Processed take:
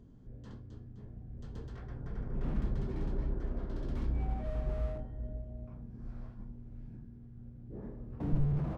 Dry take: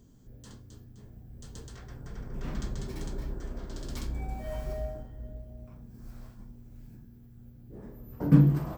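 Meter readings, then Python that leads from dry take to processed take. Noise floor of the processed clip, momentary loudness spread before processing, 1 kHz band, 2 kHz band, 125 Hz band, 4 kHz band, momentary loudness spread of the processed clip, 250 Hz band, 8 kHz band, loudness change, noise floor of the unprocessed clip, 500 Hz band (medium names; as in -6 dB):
-51 dBFS, 23 LU, -4.0 dB, -6.5 dB, -6.5 dB, -12.0 dB, 14 LU, -9.0 dB, under -20 dB, -9.0 dB, -53 dBFS, -3.5 dB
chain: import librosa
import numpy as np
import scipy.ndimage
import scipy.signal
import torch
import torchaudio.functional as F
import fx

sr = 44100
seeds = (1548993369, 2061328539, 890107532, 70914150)

y = fx.spacing_loss(x, sr, db_at_10k=31)
y = fx.slew_limit(y, sr, full_power_hz=4.0)
y = y * librosa.db_to_amplitude(2.0)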